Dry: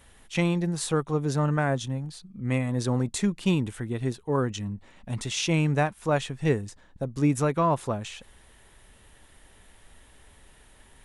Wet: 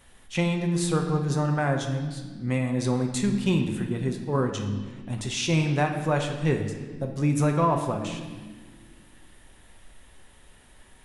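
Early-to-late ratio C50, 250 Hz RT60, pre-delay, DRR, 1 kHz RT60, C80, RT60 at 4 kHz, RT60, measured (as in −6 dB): 6.5 dB, 2.6 s, 6 ms, 3.0 dB, 1.3 s, 8.0 dB, 1.3 s, 1.6 s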